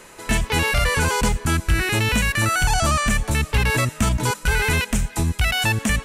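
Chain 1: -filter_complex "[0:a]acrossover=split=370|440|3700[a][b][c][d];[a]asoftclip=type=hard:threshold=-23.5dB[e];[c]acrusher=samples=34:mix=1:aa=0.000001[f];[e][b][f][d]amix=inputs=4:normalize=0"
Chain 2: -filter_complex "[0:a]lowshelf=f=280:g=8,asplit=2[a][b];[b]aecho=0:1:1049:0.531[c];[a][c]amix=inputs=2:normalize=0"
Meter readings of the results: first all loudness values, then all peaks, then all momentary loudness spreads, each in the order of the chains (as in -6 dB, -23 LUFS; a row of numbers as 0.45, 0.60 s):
-23.5, -15.5 LUFS; -9.0, -1.5 dBFS; 4, 2 LU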